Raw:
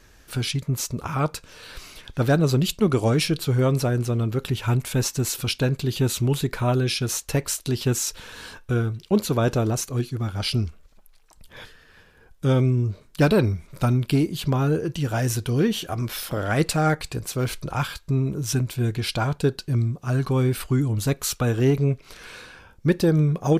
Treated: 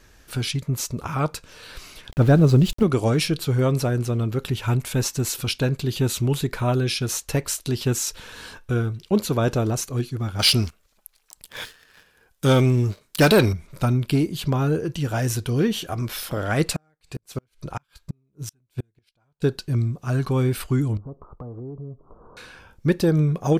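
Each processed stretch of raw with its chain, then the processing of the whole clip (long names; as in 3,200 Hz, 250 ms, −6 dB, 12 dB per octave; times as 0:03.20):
0:02.11–0:02.83: spectral tilt −2 dB per octave + centre clipping without the shift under −35.5 dBFS
0:10.39–0:13.53: spectral tilt +2 dB per octave + leveller curve on the samples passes 2
0:16.76–0:19.42: gate with flip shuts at −17 dBFS, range −36 dB + expander for the loud parts, over −40 dBFS
0:20.97–0:22.37: Butterworth low-pass 1,200 Hz 72 dB per octave + downward compressor 4 to 1, threshold −35 dBFS
whole clip: no processing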